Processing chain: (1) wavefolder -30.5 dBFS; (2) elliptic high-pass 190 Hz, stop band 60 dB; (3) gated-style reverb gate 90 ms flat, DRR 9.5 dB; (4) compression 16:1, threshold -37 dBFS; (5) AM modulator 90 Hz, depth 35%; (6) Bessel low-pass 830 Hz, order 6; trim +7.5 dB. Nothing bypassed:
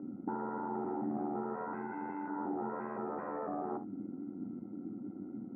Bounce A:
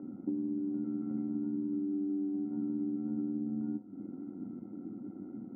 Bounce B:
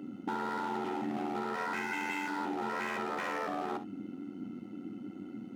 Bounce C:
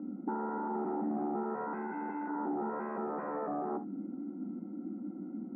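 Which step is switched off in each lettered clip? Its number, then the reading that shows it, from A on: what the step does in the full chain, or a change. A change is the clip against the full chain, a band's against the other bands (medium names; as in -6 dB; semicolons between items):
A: 1, momentary loudness spread change +3 LU; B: 6, 2 kHz band +14.0 dB; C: 5, crest factor change -2.5 dB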